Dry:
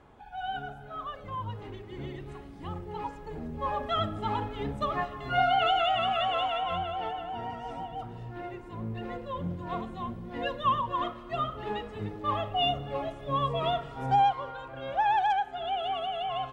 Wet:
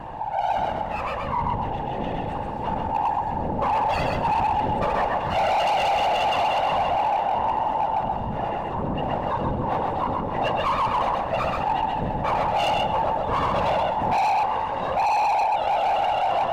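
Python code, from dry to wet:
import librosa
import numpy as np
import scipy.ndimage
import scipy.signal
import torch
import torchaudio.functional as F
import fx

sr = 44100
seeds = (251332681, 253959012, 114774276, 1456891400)

p1 = fx.lower_of_two(x, sr, delay_ms=1.1)
p2 = fx.whisperise(p1, sr, seeds[0])
p3 = 10.0 ** (-25.0 / 20.0) * (np.abs((p2 / 10.0 ** (-25.0 / 20.0) + 3.0) % 4.0 - 2.0) - 1.0)
p4 = p2 + (p3 * librosa.db_to_amplitude(-7.5))
p5 = fx.peak_eq(p4, sr, hz=860.0, db=12.5, octaves=0.33)
p6 = fx.small_body(p5, sr, hz=(530.0, 2800.0), ring_ms=20, db=9)
p7 = p6 + fx.echo_feedback(p6, sr, ms=130, feedback_pct=18, wet_db=-4.0, dry=0)
p8 = np.clip(10.0 ** (18.5 / 20.0) * p7, -1.0, 1.0) / 10.0 ** (18.5 / 20.0)
p9 = fx.high_shelf(p8, sr, hz=2600.0, db=-10.0)
y = fx.env_flatten(p9, sr, amount_pct=50)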